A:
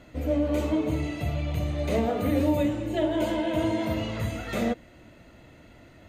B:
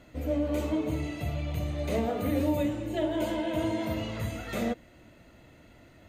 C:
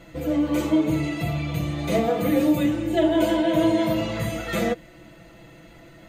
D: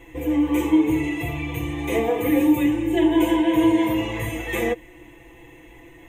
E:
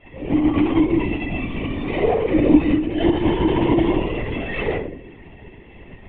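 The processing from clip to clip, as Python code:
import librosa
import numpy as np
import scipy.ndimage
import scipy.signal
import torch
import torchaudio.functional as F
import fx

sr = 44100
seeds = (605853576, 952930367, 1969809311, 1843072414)

y1 = fx.high_shelf(x, sr, hz=9000.0, db=5.0)
y1 = y1 * librosa.db_to_amplitude(-3.5)
y2 = y1 + 0.86 * np.pad(y1, (int(6.0 * sr / 1000.0), 0))[:len(y1)]
y2 = y2 * librosa.db_to_amplitude(5.5)
y3 = fx.fixed_phaser(y2, sr, hz=920.0, stages=8)
y3 = y3 * librosa.db_to_amplitude(4.5)
y4 = fx.room_shoebox(y3, sr, seeds[0], volume_m3=760.0, walls='furnished', distance_m=6.5)
y4 = fx.lpc_vocoder(y4, sr, seeds[1], excitation='whisper', order=16)
y4 = y4 * librosa.db_to_amplitude(-8.0)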